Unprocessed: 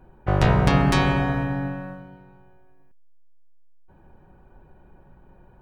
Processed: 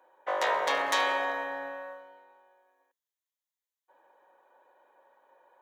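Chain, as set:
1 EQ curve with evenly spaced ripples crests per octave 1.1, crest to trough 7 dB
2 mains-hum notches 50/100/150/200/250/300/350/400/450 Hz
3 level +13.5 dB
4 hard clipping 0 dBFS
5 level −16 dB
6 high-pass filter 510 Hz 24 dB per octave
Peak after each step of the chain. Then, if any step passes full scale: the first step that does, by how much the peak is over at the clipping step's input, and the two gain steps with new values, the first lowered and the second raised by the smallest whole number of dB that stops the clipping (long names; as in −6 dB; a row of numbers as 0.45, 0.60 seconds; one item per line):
−4.5, −5.5, +8.0, 0.0, −16.0, −13.0 dBFS
step 3, 8.0 dB
step 3 +5.5 dB, step 5 −8 dB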